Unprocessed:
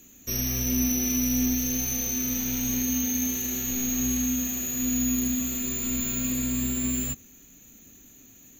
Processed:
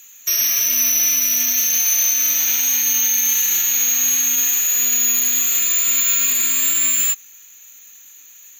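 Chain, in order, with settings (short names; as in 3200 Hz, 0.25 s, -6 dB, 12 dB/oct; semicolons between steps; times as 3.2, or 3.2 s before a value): HPF 1300 Hz 12 dB/oct; maximiser +25 dB; upward expander 1.5:1, over -25 dBFS; gain -7 dB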